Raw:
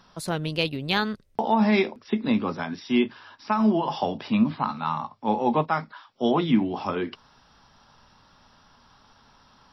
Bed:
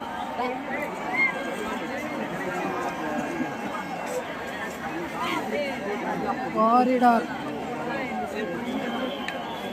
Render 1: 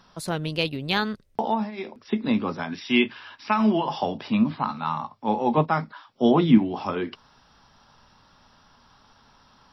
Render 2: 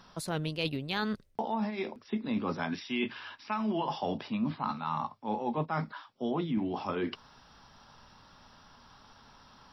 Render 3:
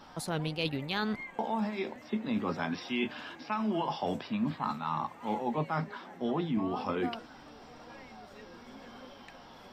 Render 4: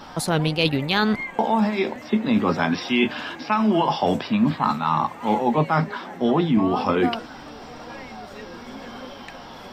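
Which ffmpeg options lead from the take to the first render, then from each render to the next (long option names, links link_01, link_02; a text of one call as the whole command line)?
ffmpeg -i in.wav -filter_complex "[0:a]asettb=1/sr,asplit=3[link_01][link_02][link_03];[link_01]atrim=end=2.724[link_04];[link_02]atrim=start=2.72:end=3.83,asetpts=PTS-STARTPTS,afade=type=in:duration=0.004:curve=qsin,afade=type=out:start_time=1.106:duration=0.004:curve=qsin,equalizer=frequency=2500:width_type=o:width=1.2:gain=9[link_05];[link_03]atrim=start=3.826[link_06];[link_04][link_05]acrossfade=duration=0.004:curve1=hsin:curve2=qsin[link_07];[link_07][link_06]acrossfade=duration=0.004:curve1=qsin:curve2=hsin,asettb=1/sr,asplit=3[link_08][link_09][link_10];[link_08]atrim=end=5.574[link_11];[link_09]atrim=start=5.57:end=6.58,asetpts=PTS-STARTPTS,afade=type=in:duration=0.004:curve=qsin,afade=type=out:start_time=1.006:duration=0.004:curve=qsin,equalizer=frequency=160:width=0.35:gain=5.5[link_12];[link_10]atrim=start=6.576[link_13];[link_11][link_12]acrossfade=duration=0.004:curve1=hsin:curve2=qsin[link_14];[link_14][link_13]acrossfade=duration=0.004:curve1=qsin:curve2=hsin,asplit=3[link_15][link_16][link_17];[link_15]atrim=end=1.71,asetpts=PTS-STARTPTS,afade=type=out:start_time=1.46:duration=0.25:silence=0.11885[link_18];[link_16]atrim=start=1.71:end=1.76,asetpts=PTS-STARTPTS,volume=-18.5dB[link_19];[link_17]atrim=start=1.76,asetpts=PTS-STARTPTS,afade=type=in:duration=0.25:silence=0.11885[link_20];[link_18][link_19][link_20]concat=n=3:v=0:a=1" out.wav
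ffmpeg -i in.wav -af "alimiter=limit=-11dB:level=0:latency=1:release=477,areverse,acompressor=threshold=-29dB:ratio=6,areverse" out.wav
ffmpeg -i in.wav -i bed.wav -filter_complex "[1:a]volume=-21dB[link_01];[0:a][link_01]amix=inputs=2:normalize=0" out.wav
ffmpeg -i in.wav -af "volume=12dB" out.wav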